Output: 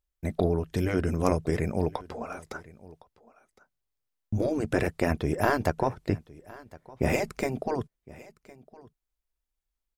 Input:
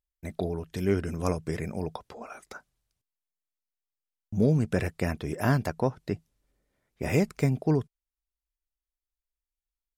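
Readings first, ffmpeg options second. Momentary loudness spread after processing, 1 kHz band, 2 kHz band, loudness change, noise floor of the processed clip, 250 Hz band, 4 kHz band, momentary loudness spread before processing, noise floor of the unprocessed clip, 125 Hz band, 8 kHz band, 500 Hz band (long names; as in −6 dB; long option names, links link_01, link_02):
16 LU, +5.0 dB, +3.0 dB, 0.0 dB, −85 dBFS, −0.5 dB, +1.5 dB, 18 LU, below −85 dBFS, −2.5 dB, +1.0 dB, +2.0 dB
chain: -filter_complex "[0:a]afftfilt=real='re*lt(hypot(re,im),0.316)':imag='im*lt(hypot(re,im),0.316)':win_size=1024:overlap=0.75,aeval=exprs='0.251*(cos(1*acos(clip(val(0)/0.251,-1,1)))-cos(1*PI/2))+0.00251*(cos(3*acos(clip(val(0)/0.251,-1,1)))-cos(3*PI/2))+0.0224*(cos(4*acos(clip(val(0)/0.251,-1,1)))-cos(4*PI/2))+0.002*(cos(5*acos(clip(val(0)/0.251,-1,1)))-cos(5*PI/2))+0.00282*(cos(6*acos(clip(val(0)/0.251,-1,1)))-cos(6*PI/2))':channel_layout=same,tiltshelf=frequency=1300:gain=3,acontrast=60,adynamicequalizer=threshold=0.0158:dfrequency=180:dqfactor=1.2:tfrequency=180:tqfactor=1.2:attack=5:release=100:ratio=0.375:range=2:mode=cutabove:tftype=bell,asplit=2[link_01][link_02];[link_02]aecho=0:1:1061:0.0841[link_03];[link_01][link_03]amix=inputs=2:normalize=0,volume=-2.5dB"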